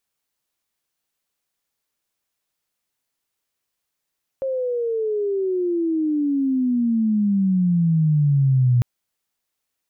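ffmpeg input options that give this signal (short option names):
-f lavfi -i "aevalsrc='pow(10,(-21+8*t/4.4)/20)*sin(2*PI*540*4.4/log(120/540)*(exp(log(120/540)*t/4.4)-1))':d=4.4:s=44100"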